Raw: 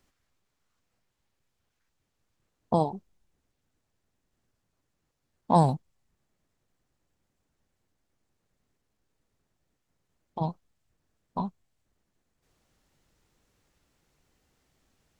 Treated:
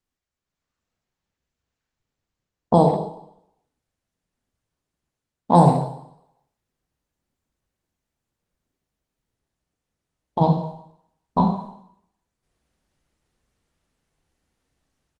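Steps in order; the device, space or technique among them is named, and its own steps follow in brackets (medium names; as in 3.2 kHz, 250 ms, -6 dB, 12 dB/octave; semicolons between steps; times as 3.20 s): gate -57 dBFS, range -15 dB; dynamic bell 430 Hz, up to +4 dB, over -43 dBFS, Q 4.7; speakerphone in a meeting room (reverberation RT60 0.70 s, pre-delay 23 ms, DRR 2.5 dB; speakerphone echo 140 ms, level -19 dB; level rider gain up to 11.5 dB; Opus 24 kbps 48 kHz)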